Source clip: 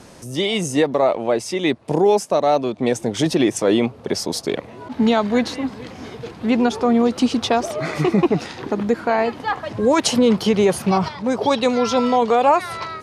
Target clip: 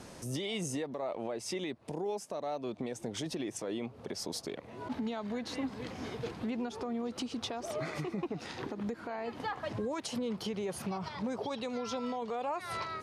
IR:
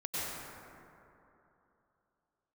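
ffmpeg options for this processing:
-af "acompressor=threshold=-21dB:ratio=6,alimiter=limit=-21.5dB:level=0:latency=1:release=264,volume=-6dB"

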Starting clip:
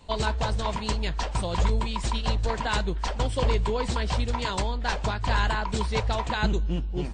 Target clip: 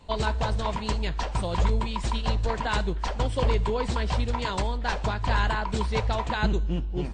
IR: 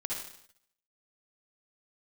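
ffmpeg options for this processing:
-filter_complex "[0:a]highshelf=frequency=4300:gain=-6,asplit=2[link_01][link_02];[1:a]atrim=start_sample=2205,afade=type=out:start_time=0.24:duration=0.01,atrim=end_sample=11025,highshelf=frequency=5800:gain=11.5[link_03];[link_02][link_03]afir=irnorm=-1:irlink=0,volume=-24.5dB[link_04];[link_01][link_04]amix=inputs=2:normalize=0"

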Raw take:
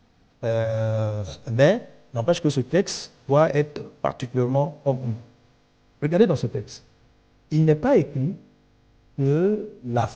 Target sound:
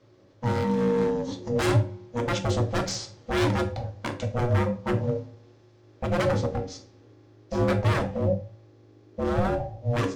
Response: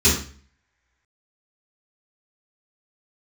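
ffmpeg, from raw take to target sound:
-filter_complex "[0:a]aeval=exprs='0.106*(abs(mod(val(0)/0.106+3,4)-2)-1)':channel_layout=same,aeval=exprs='val(0)*sin(2*PI*360*n/s)':channel_layout=same,asplit=2[link_01][link_02];[1:a]atrim=start_sample=2205,asetrate=61740,aresample=44100[link_03];[link_02][link_03]afir=irnorm=-1:irlink=0,volume=-20.5dB[link_04];[link_01][link_04]amix=inputs=2:normalize=0"

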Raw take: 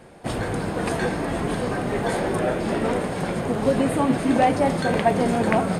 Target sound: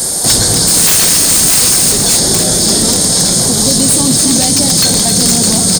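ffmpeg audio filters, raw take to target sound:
ffmpeg -i in.wav -filter_complex "[0:a]acrossover=split=7000[link_01][link_02];[link_02]acompressor=threshold=-59dB:ratio=4:attack=1:release=60[link_03];[link_01][link_03]amix=inputs=2:normalize=0,asettb=1/sr,asplit=3[link_04][link_05][link_06];[link_04]atrim=end=0.674[link_07];[link_05]atrim=start=0.67:end=1.92,asetpts=PTS-STARTPTS,afade=type=in:duration=0.004:curve=qsin,afade=type=out:start_time=1.246:duration=0.004:curve=qsin,highshelf=frequency=5200:gain=10.5[link_08];[link_06]atrim=start=1.916[link_09];[link_07][link_08]acrossfade=duration=0.004:curve1=hsin:curve2=qsin[link_10];[link_10][link_09]acrossfade=duration=0.004:curve1=qsin:curve2=hsin,acrossover=split=280|3000[link_11][link_12][link_13];[link_12]acompressor=threshold=-32dB:ratio=6[link_14];[link_11][link_14][link_13]amix=inputs=3:normalize=0,asplit=2[link_15][link_16];[link_16]asoftclip=type=hard:threshold=-24dB,volume=-11.5dB[link_17];[link_15][link_17]amix=inputs=2:normalize=0,aexciter=amount=15.9:drive=8.7:freq=4200,aeval=exprs='0.266*(abs(mod(val(0)/0.266+3,4)-2)-1)':channel_layout=same,asplit=2[link_18][link_19];[link_19]aecho=0:1:267:0.398[link_20];[link_18][link_20]amix=inputs=2:normalize=0,alimiter=level_in=19dB:limit=-1dB:release=50:level=0:latency=1,volume=-1dB" out.wav

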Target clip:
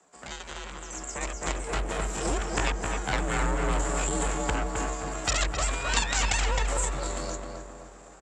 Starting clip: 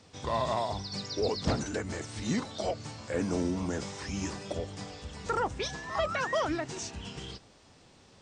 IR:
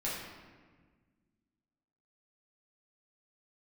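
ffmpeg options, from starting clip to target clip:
-filter_complex "[0:a]asetrate=60591,aresample=44100,atempo=0.727827,acrossover=split=370 2100:gain=0.251 1 0.178[link_01][link_02][link_03];[link_01][link_02][link_03]amix=inputs=3:normalize=0,aeval=exprs='0.1*(cos(1*acos(clip(val(0)/0.1,-1,1)))-cos(1*PI/2))+0.0447*(cos(3*acos(clip(val(0)/0.1,-1,1)))-cos(3*PI/2))+0.00708*(cos(8*acos(clip(val(0)/0.1,-1,1)))-cos(8*PI/2))':channel_layout=same,acompressor=threshold=-45dB:ratio=6,asplit=2[link_04][link_05];[link_05]adelay=262,lowpass=frequency=2000:poles=1,volume=-3.5dB,asplit=2[link_06][link_07];[link_07]adelay=262,lowpass=frequency=2000:poles=1,volume=0.48,asplit=2[link_08][link_09];[link_09]adelay=262,lowpass=frequency=2000:poles=1,volume=0.48,asplit=2[link_10][link_11];[link_11]adelay=262,lowpass=frequency=2000:poles=1,volume=0.48,asplit=2[link_12][link_13];[link_13]adelay=262,lowpass=frequency=2000:poles=1,volume=0.48,asplit=2[link_14][link_15];[link_15]adelay=262,lowpass=frequency=2000:poles=1,volume=0.48[link_16];[link_06][link_08][link_10][link_12][link_14][link_16]amix=inputs=6:normalize=0[link_17];[link_04][link_17]amix=inputs=2:normalize=0,dynaudnorm=framelen=280:gausssize=11:maxgain=12.5dB,lowpass=frequency=7400:width_type=q:width=10,afreqshift=47,volume=7.5dB"

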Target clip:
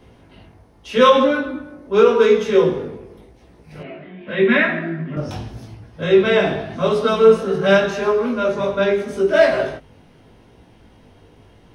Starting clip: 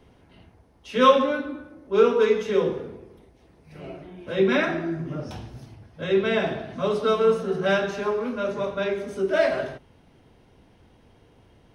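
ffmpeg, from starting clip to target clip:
ffmpeg -i in.wav -filter_complex "[0:a]flanger=delay=17:depth=3.3:speed=0.85,asettb=1/sr,asplit=3[link_01][link_02][link_03];[link_01]atrim=end=3.834[link_04];[link_02]atrim=start=3.83:end=5.17,asetpts=PTS-STARTPTS,afade=type=in:duration=0.004:curve=qsin,afade=type=out:start_time=1.336:duration=0.004:curve=qsin,highpass=200,equalizer=frequency=210:width_type=q:width=4:gain=8,equalizer=frequency=330:width_type=q:width=4:gain=-8,equalizer=frequency=490:width_type=q:width=4:gain=-5,equalizer=frequency=810:width_type=q:width=4:gain=-8,equalizer=frequency=1300:width_type=q:width=4:gain=-4,equalizer=frequency=1900:width_type=q:width=4:gain=7,lowpass=frequency=3400:width=0.5412,lowpass=frequency=3400:width=1.3066[link_05];[link_03]atrim=start=5.166[link_06];[link_04][link_05]acrossfade=duration=0.004:curve1=hsin:curve2=qsin[link_07];[link_07][link_06]acrossfade=duration=0.004:curve1=qsin:curve2=hsin,alimiter=level_in=11dB:limit=-1dB:release=50:level=0:latency=1,volume=-1dB" out.wav

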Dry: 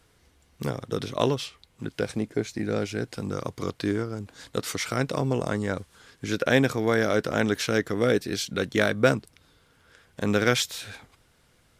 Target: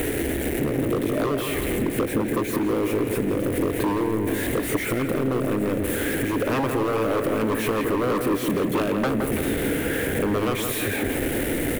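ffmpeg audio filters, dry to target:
ffmpeg -i in.wav -filter_complex "[0:a]aeval=exprs='val(0)+0.5*0.1*sgn(val(0))':channel_layout=same,firequalizer=gain_entry='entry(160,0);entry(300,14);entry(1100,-12);entry(1800,4);entry(4900,-16);entry(9900,2)':delay=0.05:min_phase=1,aeval=exprs='0.355*(abs(mod(val(0)/0.355+3,4)-2)-1)':channel_layout=same,acompressor=threshold=-21dB:ratio=6,asplit=2[link_01][link_02];[link_02]adelay=167,lowpass=frequency=2600:poles=1,volume=-5dB,asplit=2[link_03][link_04];[link_04]adelay=167,lowpass=frequency=2600:poles=1,volume=0.54,asplit=2[link_05][link_06];[link_06]adelay=167,lowpass=frequency=2600:poles=1,volume=0.54,asplit=2[link_07][link_08];[link_08]adelay=167,lowpass=frequency=2600:poles=1,volume=0.54,asplit=2[link_09][link_10];[link_10]adelay=167,lowpass=frequency=2600:poles=1,volume=0.54,asplit=2[link_11][link_12];[link_12]adelay=167,lowpass=frequency=2600:poles=1,volume=0.54,asplit=2[link_13][link_14];[link_14]adelay=167,lowpass=frequency=2600:poles=1,volume=0.54[link_15];[link_01][link_03][link_05][link_07][link_09][link_11][link_13][link_15]amix=inputs=8:normalize=0,volume=-1dB" out.wav

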